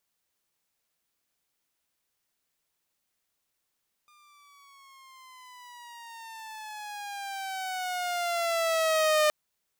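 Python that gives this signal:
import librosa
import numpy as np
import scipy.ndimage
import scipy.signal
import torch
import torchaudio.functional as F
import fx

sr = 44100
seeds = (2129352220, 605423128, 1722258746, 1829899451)

y = fx.riser_tone(sr, length_s=5.22, level_db=-17.5, wave='saw', hz=1210.0, rise_st=-12.0, swell_db=37)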